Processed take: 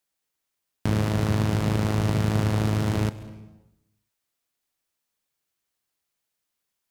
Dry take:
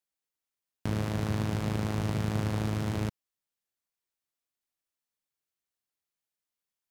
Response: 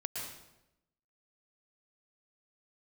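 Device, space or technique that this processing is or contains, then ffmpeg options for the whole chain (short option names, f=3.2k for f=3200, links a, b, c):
saturated reverb return: -filter_complex "[0:a]asplit=2[a][b];[1:a]atrim=start_sample=2205[c];[b][c]afir=irnorm=-1:irlink=0,asoftclip=type=tanh:threshold=-35dB,volume=-8dB[d];[a][d]amix=inputs=2:normalize=0,volume=6dB"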